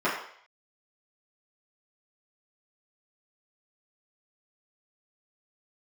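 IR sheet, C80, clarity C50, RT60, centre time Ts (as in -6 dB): 7.5 dB, 4.5 dB, 0.60 s, 39 ms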